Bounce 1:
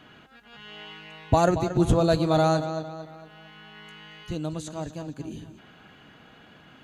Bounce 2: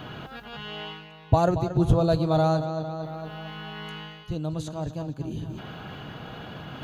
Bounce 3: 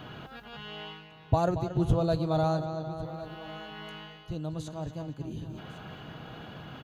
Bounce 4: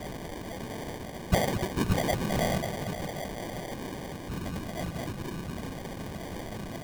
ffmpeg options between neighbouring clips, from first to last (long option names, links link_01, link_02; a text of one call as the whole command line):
ffmpeg -i in.wav -af "equalizer=frequency=125:width_type=o:width=1:gain=5,equalizer=frequency=250:width_type=o:width=1:gain=-5,equalizer=frequency=2000:width_type=o:width=1:gain=-8,equalizer=frequency=8000:width_type=o:width=1:gain=-11,areverse,acompressor=mode=upward:threshold=-25dB:ratio=2.5,areverse" out.wav
ffmpeg -i in.wav -af "aecho=1:1:1101:0.141,volume=-5dB" out.wav
ffmpeg -i in.wav -af "aeval=exprs='val(0)+0.5*0.0251*sgn(val(0))':channel_layout=same,afftfilt=real='hypot(re,im)*cos(2*PI*random(0))':imag='hypot(re,im)*sin(2*PI*random(1))':win_size=512:overlap=0.75,acrusher=samples=33:mix=1:aa=0.000001,volume=3dB" out.wav